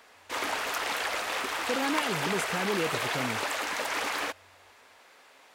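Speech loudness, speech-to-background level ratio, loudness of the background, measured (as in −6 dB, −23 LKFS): −34.0 LKFS, −3.5 dB, −30.5 LKFS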